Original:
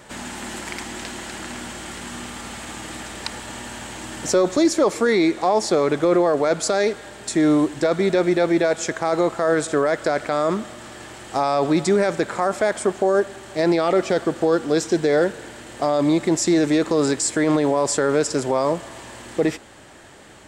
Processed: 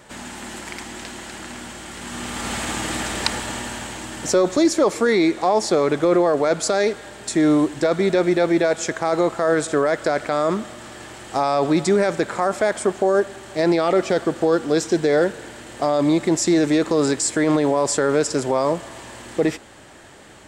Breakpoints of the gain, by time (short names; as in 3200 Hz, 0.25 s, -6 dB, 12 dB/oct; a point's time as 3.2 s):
1.91 s -2 dB
2.53 s +8 dB
3.24 s +8 dB
4.1 s +0.5 dB